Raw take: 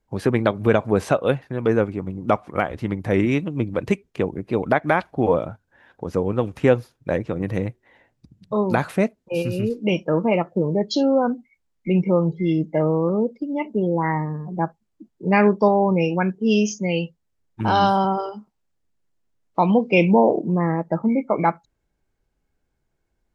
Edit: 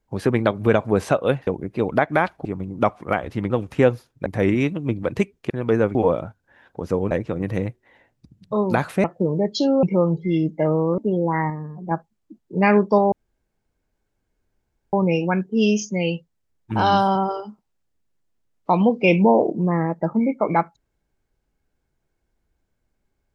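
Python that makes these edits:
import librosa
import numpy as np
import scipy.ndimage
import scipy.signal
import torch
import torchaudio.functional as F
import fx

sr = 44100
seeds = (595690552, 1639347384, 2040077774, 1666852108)

y = fx.edit(x, sr, fx.swap(start_s=1.47, length_s=0.45, other_s=4.21, other_length_s=0.98),
    fx.move(start_s=6.35, length_s=0.76, to_s=2.97),
    fx.cut(start_s=9.04, length_s=1.36),
    fx.cut(start_s=11.19, length_s=0.79),
    fx.cut(start_s=13.13, length_s=0.55),
    fx.clip_gain(start_s=14.2, length_s=0.41, db=-4.0),
    fx.insert_room_tone(at_s=15.82, length_s=1.81), tone=tone)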